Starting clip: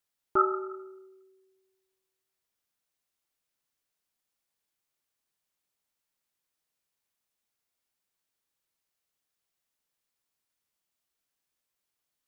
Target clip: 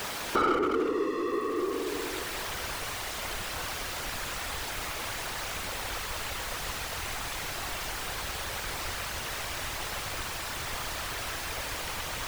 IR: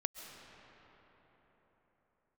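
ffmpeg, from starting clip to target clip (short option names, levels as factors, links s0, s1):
-filter_complex "[0:a]aeval=exprs='val(0)+0.5*0.0299*sgn(val(0))':c=same,asplit=2[s0][s1];[s1]highpass=f=720:p=1,volume=31.6,asoftclip=type=tanh:threshold=0.299[s2];[s0][s2]amix=inputs=2:normalize=0,lowpass=f=1300:p=1,volume=0.501,afftfilt=real='hypot(re,im)*cos(2*PI*random(0))':imag='hypot(re,im)*sin(2*PI*random(1))':win_size=512:overlap=0.75,asubboost=boost=5.5:cutoff=85"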